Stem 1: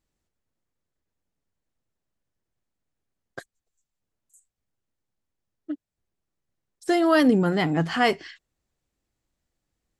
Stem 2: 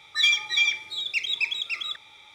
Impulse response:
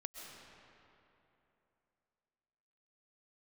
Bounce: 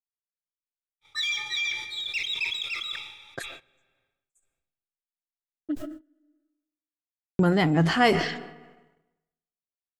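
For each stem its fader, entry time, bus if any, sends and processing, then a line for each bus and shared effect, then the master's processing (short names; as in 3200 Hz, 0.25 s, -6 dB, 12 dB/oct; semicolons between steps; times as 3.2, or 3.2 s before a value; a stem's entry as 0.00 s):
-0.5 dB, 0.00 s, muted 6–7.39, send -16 dB, dry
-7.0 dB, 1.00 s, send -3.5 dB, high shelf 4400 Hz +3.5 dB; notch 650 Hz, Q 12; limiter -16.5 dBFS, peak gain reduction 8.5 dB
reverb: on, RT60 3.1 s, pre-delay 90 ms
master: gate -53 dBFS, range -44 dB; low shelf 120 Hz +6.5 dB; sustainer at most 64 dB/s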